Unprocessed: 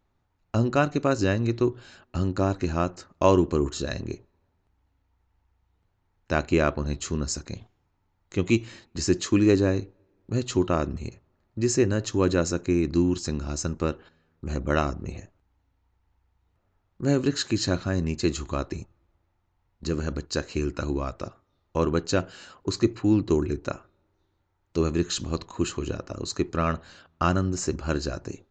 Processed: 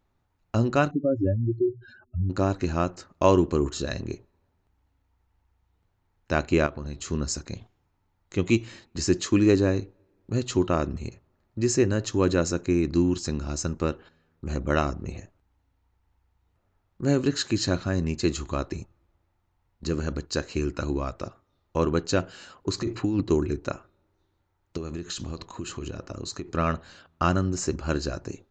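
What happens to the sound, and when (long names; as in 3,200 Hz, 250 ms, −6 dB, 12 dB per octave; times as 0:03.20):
0:00.91–0:02.30: expanding power law on the bin magnitudes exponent 3.5
0:06.66–0:07.09: downward compressor 3 to 1, threshold −32 dBFS
0:22.78–0:23.21: compressor whose output falls as the input rises −24 dBFS
0:24.77–0:26.51: downward compressor 12 to 1, threshold −29 dBFS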